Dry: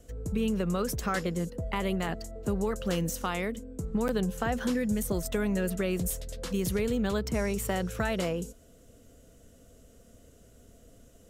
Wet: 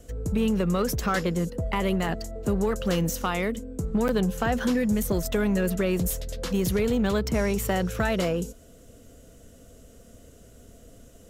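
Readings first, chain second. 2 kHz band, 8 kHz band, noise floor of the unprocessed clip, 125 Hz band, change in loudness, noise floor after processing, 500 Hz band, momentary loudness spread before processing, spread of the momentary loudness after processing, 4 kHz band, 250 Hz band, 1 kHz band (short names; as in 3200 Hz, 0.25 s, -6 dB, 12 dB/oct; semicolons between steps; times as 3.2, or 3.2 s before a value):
+4.5 dB, +2.5 dB, -57 dBFS, +5.0 dB, +4.5 dB, -51 dBFS, +4.5 dB, 5 LU, 5 LU, +4.5 dB, +5.0 dB, +4.5 dB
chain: dynamic EQ 8800 Hz, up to -5 dB, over -54 dBFS, Q 2.3; in parallel at -6 dB: hard clip -28 dBFS, distortion -10 dB; on the sum: gain +2 dB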